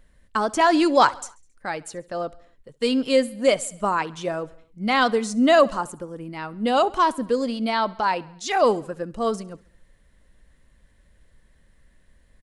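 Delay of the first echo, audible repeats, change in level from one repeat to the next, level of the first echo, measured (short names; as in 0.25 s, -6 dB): 68 ms, 3, -4.5 dB, -23.0 dB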